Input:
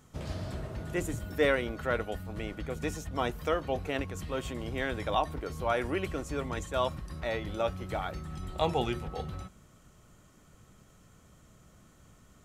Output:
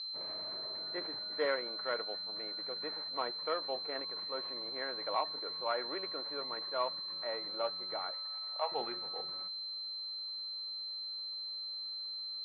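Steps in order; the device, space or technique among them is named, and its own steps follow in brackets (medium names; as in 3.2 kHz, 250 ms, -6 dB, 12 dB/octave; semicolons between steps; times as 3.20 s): 8.11–8.72 s: steep high-pass 540 Hz 36 dB/octave; toy sound module (decimation joined by straight lines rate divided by 6×; class-D stage that switches slowly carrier 4.1 kHz; cabinet simulation 640–4400 Hz, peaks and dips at 740 Hz -6 dB, 1.5 kHz -3 dB, 2.8 kHz -7 dB)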